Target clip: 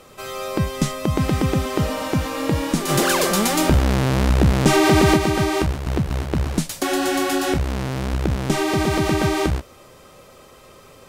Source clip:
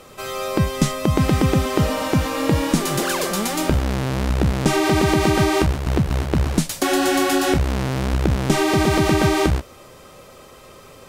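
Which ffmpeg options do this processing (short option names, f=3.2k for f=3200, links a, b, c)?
-filter_complex "[0:a]asplit=3[a][b][c];[a]afade=t=out:st=2.88:d=0.02[d];[b]acontrast=64,afade=t=in:st=2.88:d=0.02,afade=t=out:st=5.16:d=0.02[e];[c]afade=t=in:st=5.16:d=0.02[f];[d][e][f]amix=inputs=3:normalize=0,volume=-2.5dB"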